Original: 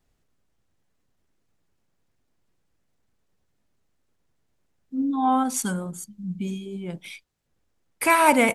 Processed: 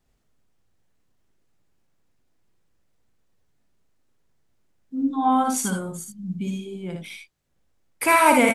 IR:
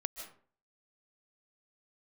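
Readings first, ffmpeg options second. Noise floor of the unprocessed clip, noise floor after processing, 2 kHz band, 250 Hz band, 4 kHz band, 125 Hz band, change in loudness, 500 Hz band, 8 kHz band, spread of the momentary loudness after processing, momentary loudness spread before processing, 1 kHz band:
−72 dBFS, −69 dBFS, +1.5 dB, +1.0 dB, +1.5 dB, +1.0 dB, +1.5 dB, +1.5 dB, +1.5 dB, 18 LU, 18 LU, +1.5 dB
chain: -af "aecho=1:1:59|78:0.562|0.355"

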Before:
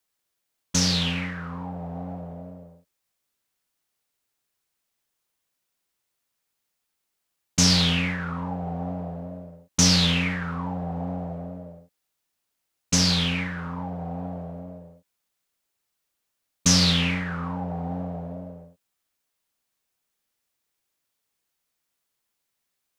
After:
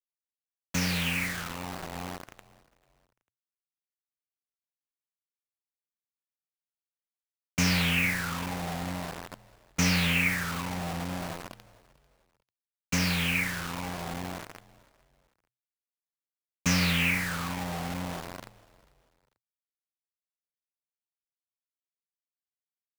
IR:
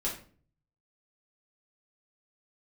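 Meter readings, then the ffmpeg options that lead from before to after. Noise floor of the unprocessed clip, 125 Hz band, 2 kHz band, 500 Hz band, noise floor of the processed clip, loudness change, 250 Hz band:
−80 dBFS, −5.5 dB, +2.5 dB, −4.5 dB, below −85 dBFS, −5.0 dB, −5.5 dB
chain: -filter_complex "[0:a]firequalizer=gain_entry='entry(550,0);entry(2400,10);entry(3500,-6)':delay=0.05:min_phase=1,acrusher=bits=4:mix=0:aa=0.000001,asplit=3[link_01][link_02][link_03];[link_02]adelay=444,afreqshift=-63,volume=-22dB[link_04];[link_03]adelay=888,afreqshift=-126,volume=-31.4dB[link_05];[link_01][link_04][link_05]amix=inputs=3:normalize=0,volume=-5.5dB"

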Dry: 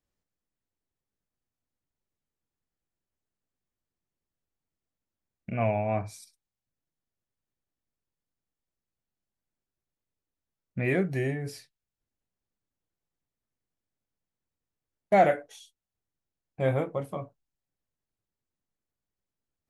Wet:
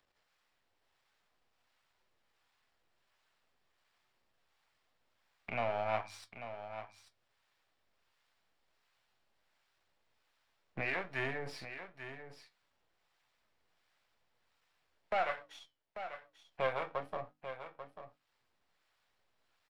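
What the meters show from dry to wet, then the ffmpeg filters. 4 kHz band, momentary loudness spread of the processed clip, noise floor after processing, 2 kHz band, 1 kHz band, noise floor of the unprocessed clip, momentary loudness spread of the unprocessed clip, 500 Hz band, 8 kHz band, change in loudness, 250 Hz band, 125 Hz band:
+0.5 dB, 18 LU, −79 dBFS, −3.0 dB, −7.5 dB, below −85 dBFS, 18 LU, −10.5 dB, −10.0 dB, −11.5 dB, −17.0 dB, −17.5 dB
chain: -filter_complex "[0:a]aeval=exprs='if(lt(val(0),0),0.251*val(0),val(0))':channel_layout=same,bandreject=frequency=6300:width=14,agate=range=-24dB:threshold=-52dB:ratio=16:detection=peak,acrossover=split=600 5000:gain=0.158 1 0.126[link_01][link_02][link_03];[link_01][link_02][link_03]amix=inputs=3:normalize=0,bandreject=frequency=50:width_type=h:width=6,bandreject=frequency=100:width_type=h:width=6,bandreject=frequency=150:width_type=h:width=6,bandreject=frequency=200:width_type=h:width=6,bandreject=frequency=250:width_type=h:width=6,bandreject=frequency=300:width_type=h:width=6,asplit=2[link_04][link_05];[link_05]acompressor=threshold=-47dB:ratio=6,volume=-0.5dB[link_06];[link_04][link_06]amix=inputs=2:normalize=0,alimiter=level_in=2dB:limit=-24dB:level=0:latency=1:release=442,volume=-2dB,acompressor=mode=upward:threshold=-54dB:ratio=2.5,acrossover=split=720[link_07][link_08];[link_07]aeval=exprs='val(0)*(1-0.5/2+0.5/2*cos(2*PI*1.4*n/s))':channel_layout=same[link_09];[link_08]aeval=exprs='val(0)*(1-0.5/2-0.5/2*cos(2*PI*1.4*n/s))':channel_layout=same[link_10];[link_09][link_10]amix=inputs=2:normalize=0,flanger=delay=7.9:depth=4.7:regen=73:speed=0.98:shape=sinusoidal,asplit=2[link_11][link_12];[link_12]aecho=0:1:841:0.299[link_13];[link_11][link_13]amix=inputs=2:normalize=0,volume=9dB"

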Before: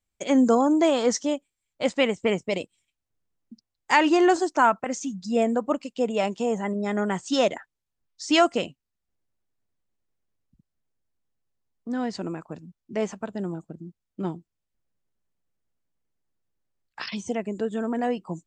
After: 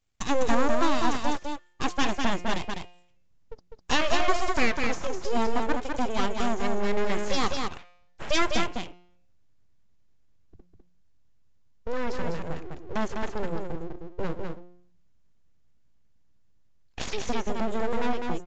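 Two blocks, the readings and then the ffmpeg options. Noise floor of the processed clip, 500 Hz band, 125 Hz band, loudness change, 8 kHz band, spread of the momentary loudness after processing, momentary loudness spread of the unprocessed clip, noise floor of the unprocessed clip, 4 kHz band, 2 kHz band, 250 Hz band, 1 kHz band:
−59 dBFS, −5.5 dB, 0.0 dB, −4.5 dB, −2.5 dB, 13 LU, 18 LU, −84 dBFS, −0.5 dB, −1.0 dB, −6.0 dB, −2.5 dB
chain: -af "bandreject=frequency=177:width_type=h:width=4,bandreject=frequency=354:width_type=h:width=4,bandreject=frequency=531:width_type=h:width=4,bandreject=frequency=708:width_type=h:width=4,bandreject=frequency=885:width_type=h:width=4,bandreject=frequency=1062:width_type=h:width=4,bandreject=frequency=1239:width_type=h:width=4,bandreject=frequency=1416:width_type=h:width=4,bandreject=frequency=1593:width_type=h:width=4,bandreject=frequency=1770:width_type=h:width=4,bandreject=frequency=1947:width_type=h:width=4,bandreject=frequency=2124:width_type=h:width=4,bandreject=frequency=2301:width_type=h:width=4,bandreject=frequency=2478:width_type=h:width=4,bandreject=frequency=2655:width_type=h:width=4,asubboost=boost=2:cutoff=240,acompressor=threshold=-39dB:ratio=1.5,aeval=exprs='abs(val(0))':channel_layout=same,aecho=1:1:202:0.596,aresample=16000,aresample=44100,volume=6.5dB"

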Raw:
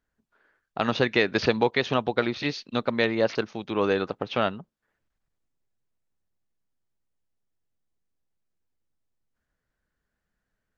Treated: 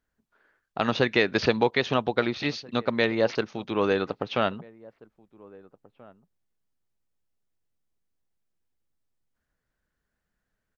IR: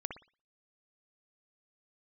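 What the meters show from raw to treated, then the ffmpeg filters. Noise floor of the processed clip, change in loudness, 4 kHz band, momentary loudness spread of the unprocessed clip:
−82 dBFS, 0.0 dB, 0.0 dB, 7 LU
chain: -filter_complex "[0:a]asplit=2[link_01][link_02];[link_02]adelay=1633,volume=-23dB,highshelf=frequency=4000:gain=-36.7[link_03];[link_01][link_03]amix=inputs=2:normalize=0"

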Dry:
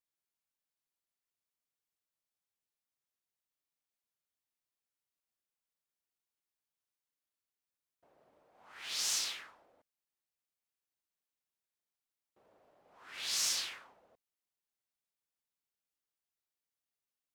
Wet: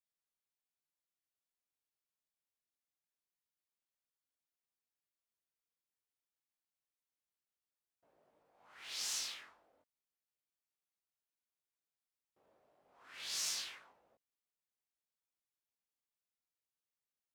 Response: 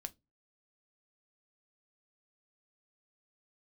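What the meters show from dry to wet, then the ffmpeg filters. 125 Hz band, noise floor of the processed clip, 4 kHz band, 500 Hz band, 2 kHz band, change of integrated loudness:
can't be measured, below −85 dBFS, −5.5 dB, −5.5 dB, −5.5 dB, −5.5 dB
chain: -af "flanger=delay=16:depth=6.6:speed=0.27,volume=-2.5dB"

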